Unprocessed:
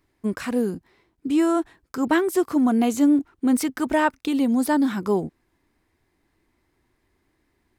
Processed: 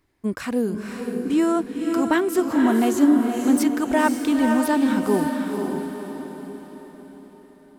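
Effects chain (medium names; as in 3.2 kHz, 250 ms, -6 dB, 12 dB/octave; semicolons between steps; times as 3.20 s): echo that smears into a reverb 517 ms, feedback 47%, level -4 dB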